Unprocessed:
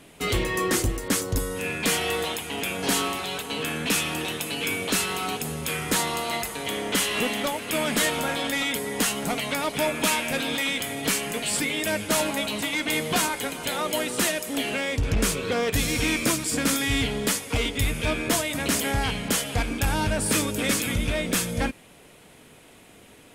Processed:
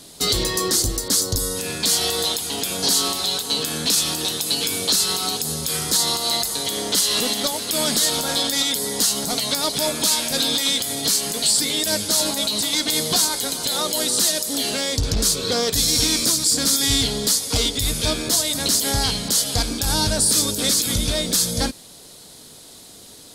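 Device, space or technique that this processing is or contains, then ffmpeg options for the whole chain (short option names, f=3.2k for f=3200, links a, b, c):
over-bright horn tweeter: -af "highshelf=f=3.3k:t=q:w=3:g=9.5,alimiter=limit=-10.5dB:level=0:latency=1:release=92,volume=2.5dB"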